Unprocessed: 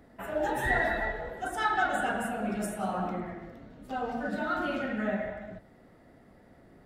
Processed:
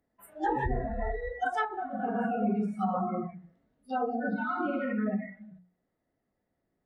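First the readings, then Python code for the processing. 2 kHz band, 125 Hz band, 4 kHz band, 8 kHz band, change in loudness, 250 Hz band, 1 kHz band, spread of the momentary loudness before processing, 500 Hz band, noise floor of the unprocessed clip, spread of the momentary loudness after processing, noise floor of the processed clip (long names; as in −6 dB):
−6.5 dB, +2.5 dB, can't be measured, below −15 dB, −0.5 dB, +3.0 dB, −0.5 dB, 15 LU, −1.5 dB, −58 dBFS, 7 LU, −81 dBFS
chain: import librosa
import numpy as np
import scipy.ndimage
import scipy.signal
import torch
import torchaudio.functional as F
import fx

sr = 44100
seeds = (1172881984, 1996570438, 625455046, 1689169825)

y = fx.noise_reduce_blind(x, sr, reduce_db=27)
y = fx.notch(y, sr, hz=1400.0, q=22.0)
y = fx.env_lowpass_down(y, sr, base_hz=370.0, full_db=-26.0)
y = fx.hum_notches(y, sr, base_hz=60, count=4)
y = fx.rider(y, sr, range_db=10, speed_s=2.0)
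y = y * librosa.db_to_amplitude(5.0)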